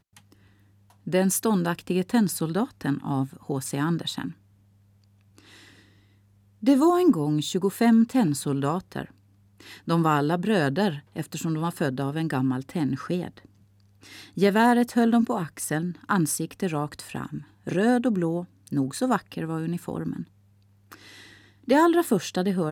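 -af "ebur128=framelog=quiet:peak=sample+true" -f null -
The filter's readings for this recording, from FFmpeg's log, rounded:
Integrated loudness:
  I:         -24.9 LUFS
  Threshold: -36.3 LUFS
Loudness range:
  LRA:         6.8 LU
  Threshold: -46.3 LUFS
  LRA low:   -30.3 LUFS
  LRA high:  -23.5 LUFS
Sample peak:
  Peak:       -8.3 dBFS
True peak:
  Peak:       -8.3 dBFS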